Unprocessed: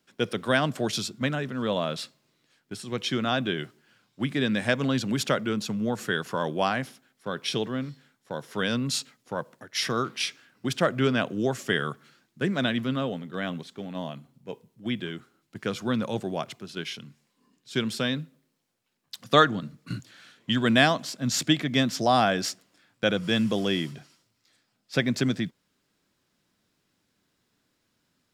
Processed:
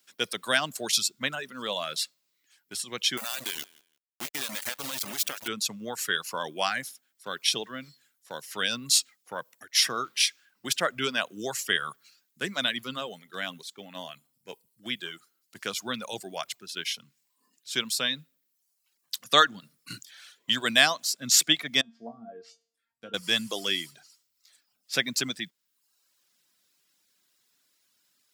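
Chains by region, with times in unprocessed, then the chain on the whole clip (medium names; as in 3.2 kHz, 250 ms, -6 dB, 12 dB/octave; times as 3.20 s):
3.17–5.48 s: compression 16:1, threshold -27 dBFS + small samples zeroed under -30.5 dBFS + feedback delay 169 ms, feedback 21%, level -14 dB
21.81–23.14 s: tilt shelf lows +6 dB, about 720 Hz + low-pass that closes with the level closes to 440 Hz, closed at -15.5 dBFS + feedback comb 230 Hz, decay 0.48 s, mix 90%
whole clip: reverb removal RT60 0.8 s; tilt EQ +4 dB/octave; trim -2 dB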